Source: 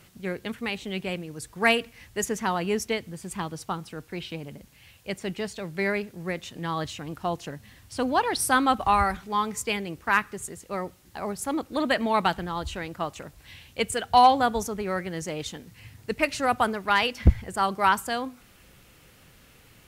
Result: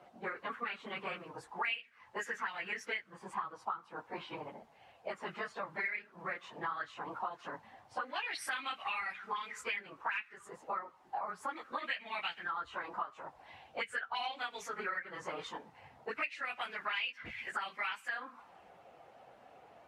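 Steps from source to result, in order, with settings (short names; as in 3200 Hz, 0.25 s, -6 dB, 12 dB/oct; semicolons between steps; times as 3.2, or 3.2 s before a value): phase scrambler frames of 50 ms; auto-wah 690–2500 Hz, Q 5.1, up, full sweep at -21 dBFS; compressor 6:1, threshold -49 dBFS, peak gain reduction 24 dB; gain +13 dB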